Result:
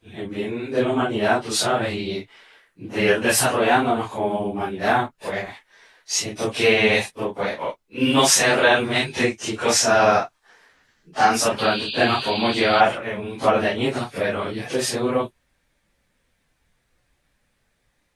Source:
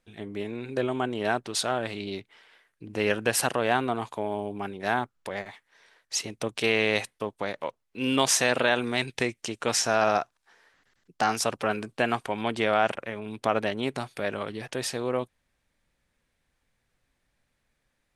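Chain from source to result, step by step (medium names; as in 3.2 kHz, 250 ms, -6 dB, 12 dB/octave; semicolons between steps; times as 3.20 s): phase randomisation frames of 100 ms; painted sound noise, 11.58–12.81 s, 2.4–4.8 kHz -37 dBFS; trim +7 dB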